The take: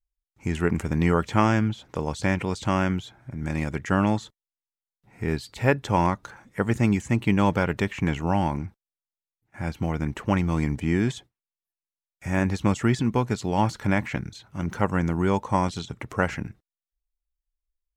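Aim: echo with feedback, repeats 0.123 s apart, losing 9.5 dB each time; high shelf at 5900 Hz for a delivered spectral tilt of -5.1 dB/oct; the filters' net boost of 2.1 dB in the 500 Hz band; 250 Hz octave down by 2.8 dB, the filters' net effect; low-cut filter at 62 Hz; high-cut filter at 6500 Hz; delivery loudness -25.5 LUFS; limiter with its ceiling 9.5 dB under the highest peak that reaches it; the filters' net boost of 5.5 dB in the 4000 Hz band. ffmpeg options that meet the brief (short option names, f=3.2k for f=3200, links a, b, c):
-af "highpass=62,lowpass=6.5k,equalizer=f=250:t=o:g=-5,equalizer=f=500:t=o:g=4,equalizer=f=4k:t=o:g=5,highshelf=f=5.9k:g=7.5,alimiter=limit=-11dB:level=0:latency=1,aecho=1:1:123|246|369|492:0.335|0.111|0.0365|0.012,volume=1.5dB"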